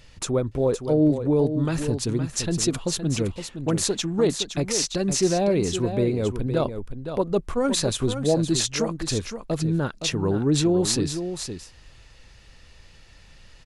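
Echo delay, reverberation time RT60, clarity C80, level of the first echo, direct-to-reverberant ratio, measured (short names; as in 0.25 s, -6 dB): 0.516 s, none, none, -9.0 dB, none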